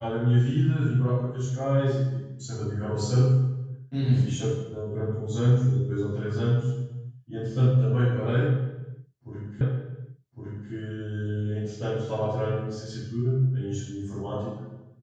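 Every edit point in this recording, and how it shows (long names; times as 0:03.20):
0:09.61: the same again, the last 1.11 s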